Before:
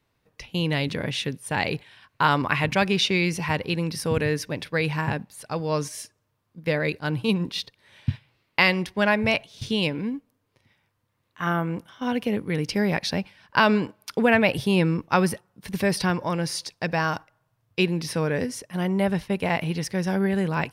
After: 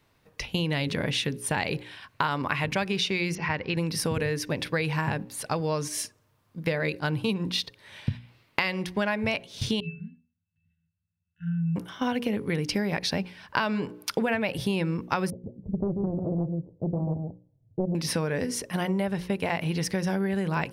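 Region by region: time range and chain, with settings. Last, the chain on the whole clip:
0:03.35–0:03.77: Chebyshev low-pass with heavy ripple 7,000 Hz, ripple 6 dB + high-shelf EQ 4,800 Hz −10.5 dB
0:09.80–0:11.76: linear-phase brick-wall band-stop 270–1,400 Hz + resonances in every octave E, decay 0.28 s
0:15.30–0:17.95: Gaussian smoothing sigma 19 samples + single-tap delay 139 ms −5.5 dB + highs frequency-modulated by the lows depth 0.72 ms
whole clip: mains-hum notches 60/120/180/240/300/360/420/480/540 Hz; downward compressor 6 to 1, threshold −31 dBFS; level +6.5 dB

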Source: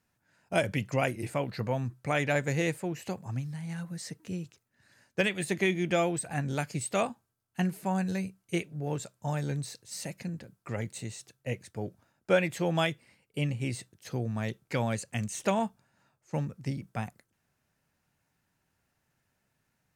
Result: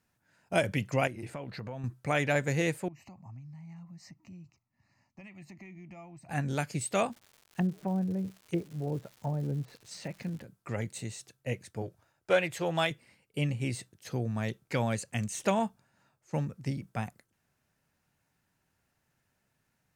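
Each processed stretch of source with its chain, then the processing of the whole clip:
0:01.07–0:01.84: high-shelf EQ 7,600 Hz −11 dB + downward compressor 5 to 1, threshold −36 dBFS
0:02.88–0:06.29: high-shelf EQ 2,100 Hz −11 dB + downward compressor 3 to 1, threshold −46 dBFS + phaser with its sweep stopped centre 2,300 Hz, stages 8
0:07.10–0:10.42: treble cut that deepens with the level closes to 530 Hz, closed at −28.5 dBFS + surface crackle 310 per second −44 dBFS
0:11.82–0:12.91: parametric band 220 Hz −14 dB 0.58 octaves + highs frequency-modulated by the lows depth 0.1 ms
whole clip: no processing

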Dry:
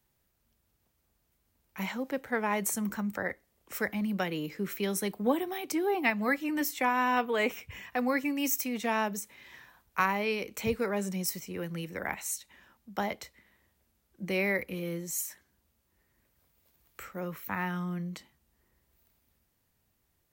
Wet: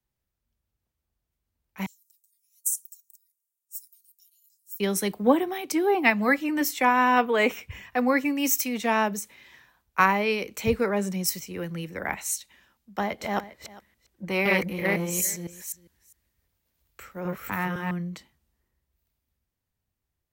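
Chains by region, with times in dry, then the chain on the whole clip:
0:01.86–0:04.80: inverse Chebyshev high-pass filter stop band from 1,700 Hz, stop band 70 dB + comb filter 4.2 ms, depth 43%
0:12.93–0:17.91: delay that plays each chunk backwards 254 ms, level 0 dB + single-tap delay 403 ms −16.5 dB + saturating transformer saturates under 910 Hz
whole clip: high-shelf EQ 8,500 Hz −4 dB; multiband upward and downward expander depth 40%; level +5.5 dB

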